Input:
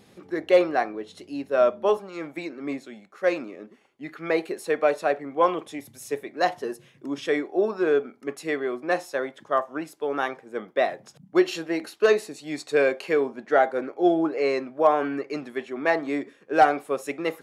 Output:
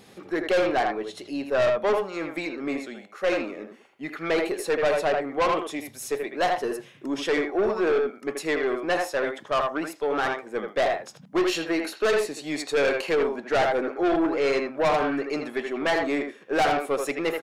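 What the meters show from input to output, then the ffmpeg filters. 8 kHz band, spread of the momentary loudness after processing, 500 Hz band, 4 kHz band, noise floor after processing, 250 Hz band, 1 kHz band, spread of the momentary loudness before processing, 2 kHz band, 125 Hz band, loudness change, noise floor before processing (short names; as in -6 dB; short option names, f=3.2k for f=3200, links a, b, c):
+5.0 dB, 9 LU, -0.5 dB, +5.0 dB, -51 dBFS, 0.0 dB, -1.0 dB, 14 LU, +1.5 dB, +2.5 dB, -0.5 dB, -57 dBFS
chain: -filter_complex "[0:a]lowshelf=f=340:g=-5,asplit=2[a][b];[b]adelay=80,highpass=300,lowpass=3.4k,asoftclip=type=hard:threshold=-15.5dB,volume=-6dB[c];[a][c]amix=inputs=2:normalize=0,aeval=exprs='(tanh(15.8*val(0)+0.15)-tanh(0.15))/15.8':c=same,volume=5.5dB"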